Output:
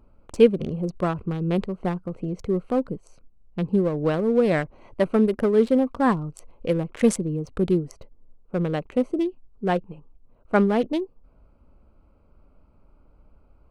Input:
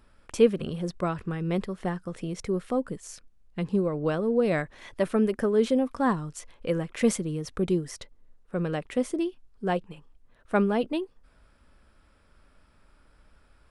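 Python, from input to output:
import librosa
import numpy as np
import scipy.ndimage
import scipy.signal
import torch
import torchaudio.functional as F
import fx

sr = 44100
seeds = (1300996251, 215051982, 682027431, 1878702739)

y = fx.wiener(x, sr, points=25)
y = y * 10.0 ** (4.5 / 20.0)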